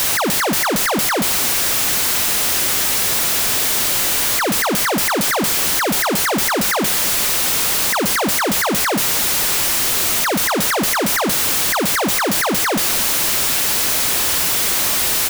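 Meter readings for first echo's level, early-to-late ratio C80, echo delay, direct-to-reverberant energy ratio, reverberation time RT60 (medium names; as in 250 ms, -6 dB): -17.0 dB, no reverb, 249 ms, no reverb, no reverb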